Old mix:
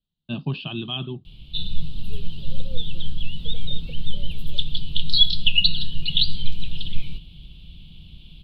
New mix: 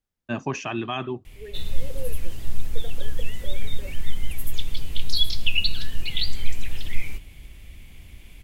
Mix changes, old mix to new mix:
first voice: remove steep low-pass 5000 Hz 96 dB/oct; second voice: entry -0.70 s; master: remove EQ curve 110 Hz 0 dB, 160 Hz +12 dB, 230 Hz 0 dB, 480 Hz -8 dB, 1400 Hz -11 dB, 2000 Hz -24 dB, 2900 Hz +7 dB, 4000 Hz +9 dB, 6300 Hz -21 dB, 11000 Hz -19 dB

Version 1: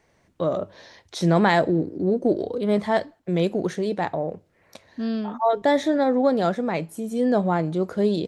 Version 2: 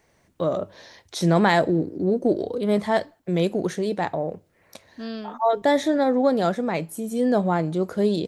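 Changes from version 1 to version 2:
second voice: add bell 160 Hz -9 dB 2.3 oct; master: add high shelf 9800 Hz +11.5 dB

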